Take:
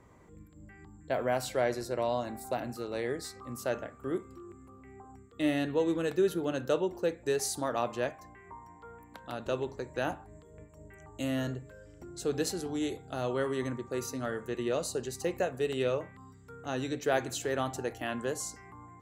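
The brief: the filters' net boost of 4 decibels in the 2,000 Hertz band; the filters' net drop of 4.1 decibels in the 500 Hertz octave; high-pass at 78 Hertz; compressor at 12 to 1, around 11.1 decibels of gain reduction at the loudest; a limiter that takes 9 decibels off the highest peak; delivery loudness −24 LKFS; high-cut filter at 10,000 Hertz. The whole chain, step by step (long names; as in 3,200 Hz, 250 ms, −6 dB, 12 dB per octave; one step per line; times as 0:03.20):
high-pass filter 78 Hz
low-pass filter 10,000 Hz
parametric band 500 Hz −5.5 dB
parametric band 2,000 Hz +5.5 dB
downward compressor 12 to 1, threshold −36 dBFS
level +19.5 dB
brickwall limiter −11 dBFS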